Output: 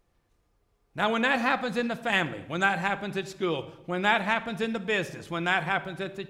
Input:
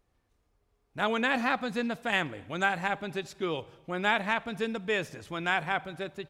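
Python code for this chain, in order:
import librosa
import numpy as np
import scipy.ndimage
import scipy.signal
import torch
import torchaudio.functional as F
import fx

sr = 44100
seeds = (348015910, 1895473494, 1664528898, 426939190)

y = fx.room_shoebox(x, sr, seeds[0], volume_m3=2200.0, walls='furnished', distance_m=0.78)
y = y * librosa.db_to_amplitude(2.5)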